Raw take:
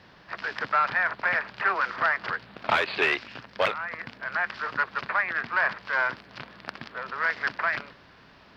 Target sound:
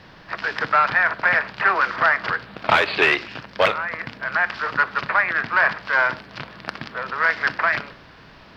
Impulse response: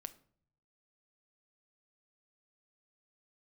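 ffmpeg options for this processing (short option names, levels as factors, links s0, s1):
-filter_complex "[0:a]asplit=2[s0][s1];[1:a]atrim=start_sample=2205,lowshelf=f=76:g=10[s2];[s1][s2]afir=irnorm=-1:irlink=0,volume=3.76[s3];[s0][s3]amix=inputs=2:normalize=0,volume=0.668"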